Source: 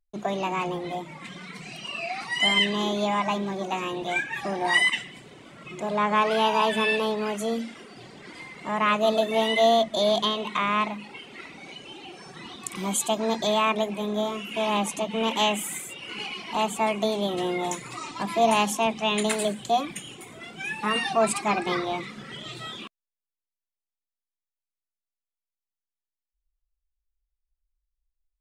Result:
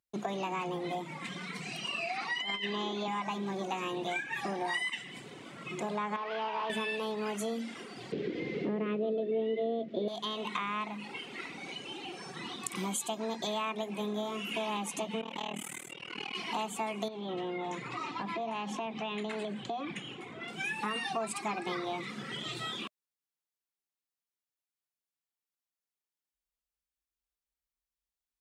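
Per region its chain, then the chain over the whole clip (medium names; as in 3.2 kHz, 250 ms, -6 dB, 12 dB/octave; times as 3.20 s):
2.17–3.08 s: band-pass 220–4900 Hz + compressor with a negative ratio -25 dBFS, ratio -0.5
6.16–6.70 s: one-bit delta coder 64 kbps, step -41 dBFS + high-pass 970 Hz 6 dB/octave + distance through air 270 m
8.12–10.08 s: zero-crossing glitches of -27 dBFS + low-pass 3.3 kHz 24 dB/octave + resonant low shelf 650 Hz +12.5 dB, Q 3
15.21–16.35 s: AM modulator 39 Hz, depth 100% + low-pass 3.8 kHz 6 dB/octave + compression 4:1, threshold -32 dBFS
17.08–20.48 s: low-pass 3.2 kHz + compression, threshold -31 dBFS
whole clip: high-pass 120 Hz; band-stop 610 Hz, Q 12; compression 6:1, threshold -32 dBFS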